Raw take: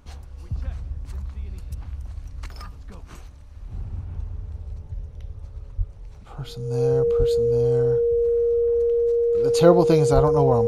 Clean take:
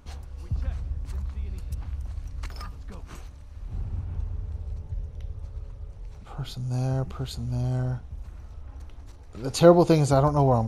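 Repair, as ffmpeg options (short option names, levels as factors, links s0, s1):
-filter_complex "[0:a]bandreject=f=470:w=30,asplit=3[s0][s1][s2];[s0]afade=t=out:st=5.77:d=0.02[s3];[s1]highpass=f=140:w=0.5412,highpass=f=140:w=1.3066,afade=t=in:st=5.77:d=0.02,afade=t=out:st=5.89:d=0.02[s4];[s2]afade=t=in:st=5.89:d=0.02[s5];[s3][s4][s5]amix=inputs=3:normalize=0,asplit=3[s6][s7][s8];[s6]afade=t=out:st=7.18:d=0.02[s9];[s7]highpass=f=140:w=0.5412,highpass=f=140:w=1.3066,afade=t=in:st=7.18:d=0.02,afade=t=out:st=7.3:d=0.02[s10];[s8]afade=t=in:st=7.3:d=0.02[s11];[s9][s10][s11]amix=inputs=3:normalize=0,asplit=3[s12][s13][s14];[s12]afade=t=out:st=10.14:d=0.02[s15];[s13]highpass=f=140:w=0.5412,highpass=f=140:w=1.3066,afade=t=in:st=10.14:d=0.02,afade=t=out:st=10.26:d=0.02[s16];[s14]afade=t=in:st=10.26:d=0.02[s17];[s15][s16][s17]amix=inputs=3:normalize=0"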